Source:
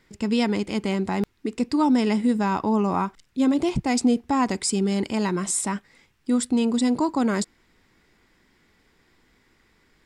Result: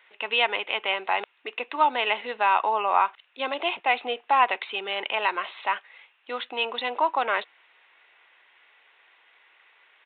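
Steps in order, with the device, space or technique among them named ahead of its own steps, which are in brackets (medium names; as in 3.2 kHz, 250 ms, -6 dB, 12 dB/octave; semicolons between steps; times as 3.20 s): musical greeting card (resampled via 8 kHz; high-pass 610 Hz 24 dB/octave; peaking EQ 2.7 kHz +8 dB 0.34 oct); trim +5.5 dB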